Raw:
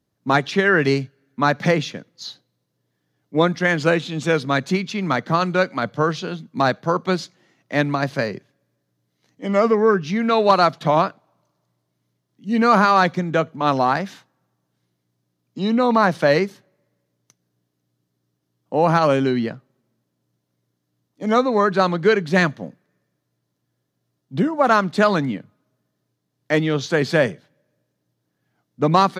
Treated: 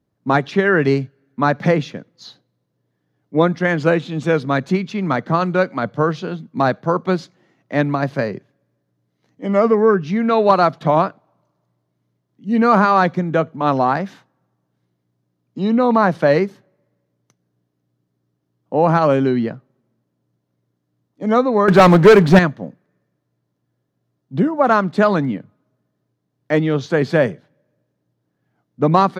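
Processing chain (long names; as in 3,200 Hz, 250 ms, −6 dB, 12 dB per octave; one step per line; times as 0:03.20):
high-shelf EQ 2,300 Hz −11 dB
0:21.68–0:22.39: leveller curve on the samples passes 3
level +3 dB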